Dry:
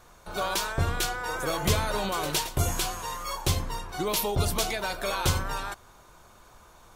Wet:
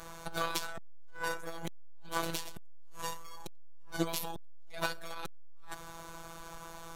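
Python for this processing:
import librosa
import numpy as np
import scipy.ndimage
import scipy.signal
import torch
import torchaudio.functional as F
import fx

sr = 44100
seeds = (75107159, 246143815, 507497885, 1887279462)

y = fx.robotise(x, sr, hz=166.0)
y = fx.transformer_sat(y, sr, knee_hz=1600.0)
y = y * 10.0 ** (9.5 / 20.0)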